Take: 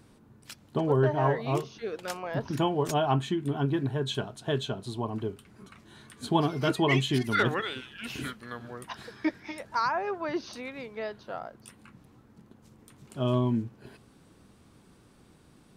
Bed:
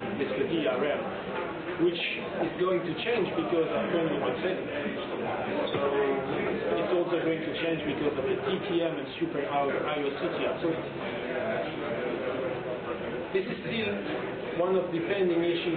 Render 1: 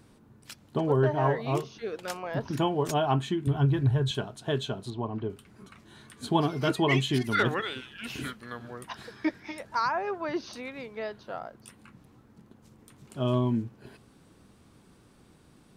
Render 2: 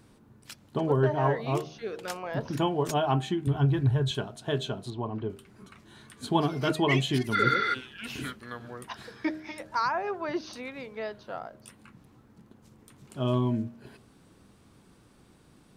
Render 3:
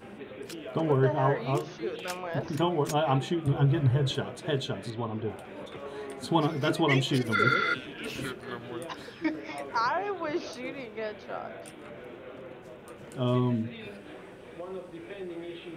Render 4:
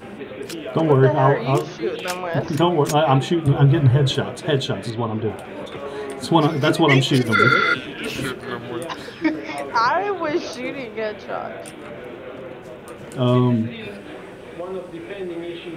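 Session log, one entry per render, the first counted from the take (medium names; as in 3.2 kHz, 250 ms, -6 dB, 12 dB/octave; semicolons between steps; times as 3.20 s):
3.47–4.11 s: resonant low shelf 140 Hz +13 dB, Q 1.5; 4.90–5.30 s: distance through air 200 m
de-hum 77.89 Hz, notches 10; 7.40–7.72 s: spectral replace 570–6400 Hz before
add bed -13 dB
trim +9.5 dB; peak limiter -3 dBFS, peak gain reduction 1.5 dB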